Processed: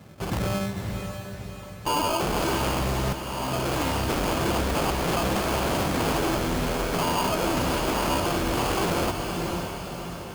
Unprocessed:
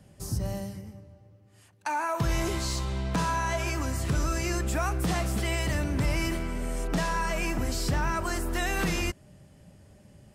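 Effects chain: rattle on loud lows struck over -26 dBFS, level -25 dBFS; 4.46–6.11 s: doubling 19 ms -7 dB; sample-rate reducer 1.9 kHz, jitter 0%; high-pass 47 Hz 6 dB/octave; echo that smears into a reverb 571 ms, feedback 45%, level -10.5 dB; wavefolder -28 dBFS; bass shelf 61 Hz -7.5 dB; 3.13–3.74 s: fade in; echo that smears into a reverb 552 ms, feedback 49%, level -9 dB; trim +8.5 dB

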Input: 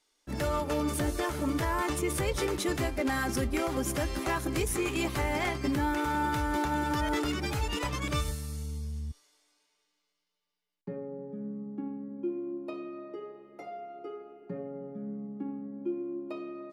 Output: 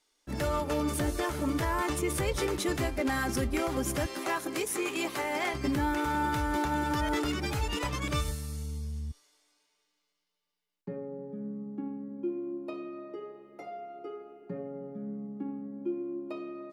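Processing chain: 4.06–5.54 s: high-pass 300 Hz 12 dB/octave

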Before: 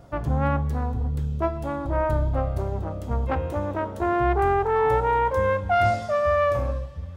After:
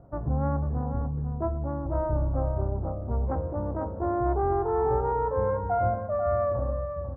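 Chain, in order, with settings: Bessel low-pass 860 Hz, order 6; echo from a far wall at 85 m, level -8 dB; trim -3 dB

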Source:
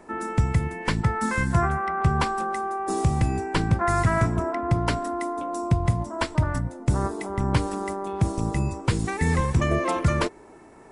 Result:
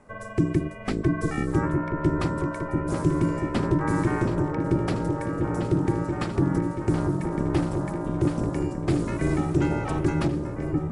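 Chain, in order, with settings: bass shelf 97 Hz +11 dB; ring modulator 230 Hz; delay with an opening low-pass 686 ms, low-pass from 400 Hz, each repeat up 2 oct, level -3 dB; trim -4.5 dB

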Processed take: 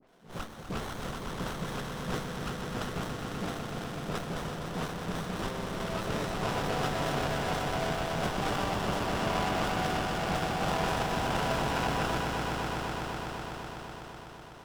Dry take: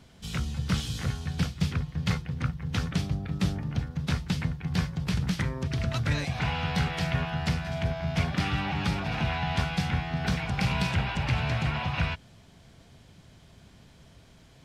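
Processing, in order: high-pass 410 Hz 12 dB/octave; band-stop 840 Hz, Q 17; in parallel at -4.5 dB: Schmitt trigger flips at -30.5 dBFS; on the sum: phase dispersion highs, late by 84 ms, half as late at 1.7 kHz; on a send: echo with a slow build-up 125 ms, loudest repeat 5, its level -7 dB; on the sum: sliding maximum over 17 samples; trim +1 dB

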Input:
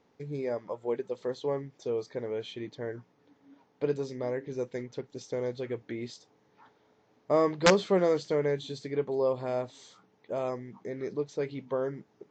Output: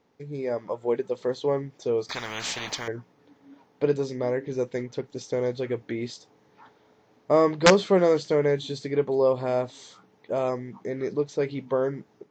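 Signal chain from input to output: level rider gain up to 6 dB; 2.09–2.88 s: spectrum-flattening compressor 10:1

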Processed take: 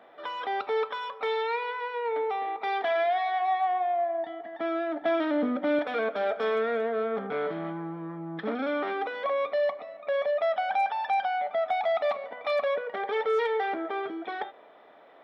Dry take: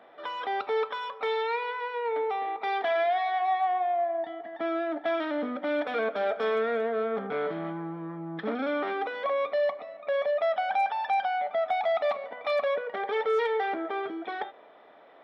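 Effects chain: 5.02–5.79 s: bass shelf 420 Hz +8 dB

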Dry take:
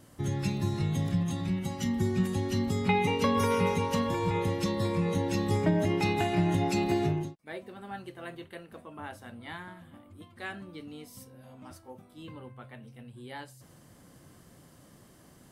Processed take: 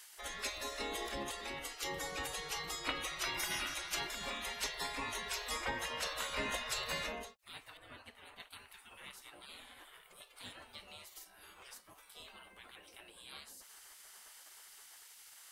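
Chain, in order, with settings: spectral gate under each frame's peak -20 dB weak; 7.77–8.40 s: treble shelf 2.2 kHz -12 dB; tape noise reduction on one side only encoder only; trim +3.5 dB

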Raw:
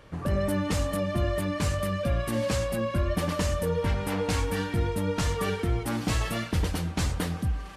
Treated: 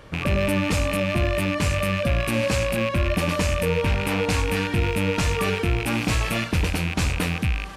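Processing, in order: rattle on loud lows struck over -36 dBFS, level -21 dBFS; in parallel at +0.5 dB: peak limiter -22.5 dBFS, peak gain reduction 8.5 dB

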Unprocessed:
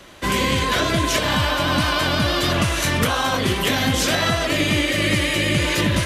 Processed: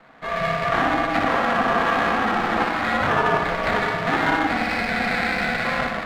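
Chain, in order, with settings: on a send: flutter echo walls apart 10.2 m, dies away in 0.84 s; on the sum: level rider; mistuned SSB -110 Hz 500–2200 Hz; ring modulator 250 Hz; sliding maximum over 5 samples

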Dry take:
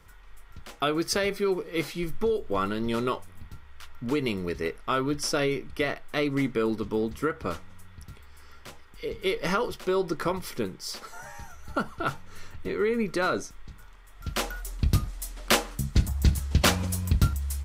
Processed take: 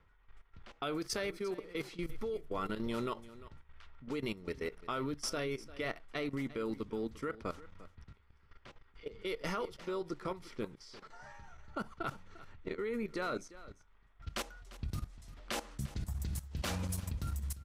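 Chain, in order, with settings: level held to a coarse grid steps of 15 dB; level-controlled noise filter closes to 2.8 kHz, open at -28 dBFS; delay 348 ms -17.5 dB; trim -6 dB

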